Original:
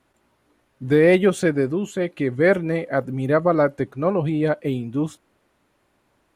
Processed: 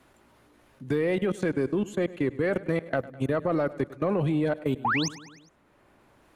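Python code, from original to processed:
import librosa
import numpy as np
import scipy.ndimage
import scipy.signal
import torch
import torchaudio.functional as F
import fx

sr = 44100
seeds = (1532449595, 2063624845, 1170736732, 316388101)

y = fx.spec_paint(x, sr, seeds[0], shape='rise', start_s=4.84, length_s=0.25, low_hz=720.0, high_hz=7100.0, level_db=-22.0)
y = fx.level_steps(y, sr, step_db=24)
y = 10.0 ** (-14.5 / 20.0) * np.tanh(y / 10.0 ** (-14.5 / 20.0))
y = fx.echo_feedback(y, sr, ms=102, feedback_pct=54, wet_db=-19)
y = fx.band_squash(y, sr, depth_pct=40)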